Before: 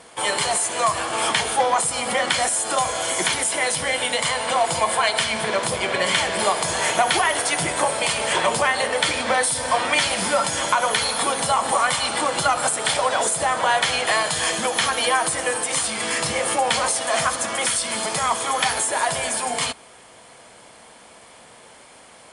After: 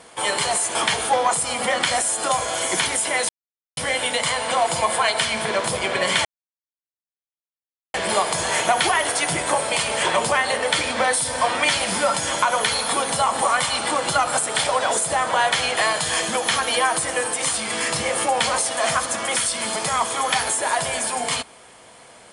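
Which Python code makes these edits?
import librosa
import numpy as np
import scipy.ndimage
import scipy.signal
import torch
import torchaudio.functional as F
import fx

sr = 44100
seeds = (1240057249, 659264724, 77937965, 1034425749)

y = fx.edit(x, sr, fx.cut(start_s=0.75, length_s=0.47),
    fx.insert_silence(at_s=3.76, length_s=0.48),
    fx.insert_silence(at_s=6.24, length_s=1.69), tone=tone)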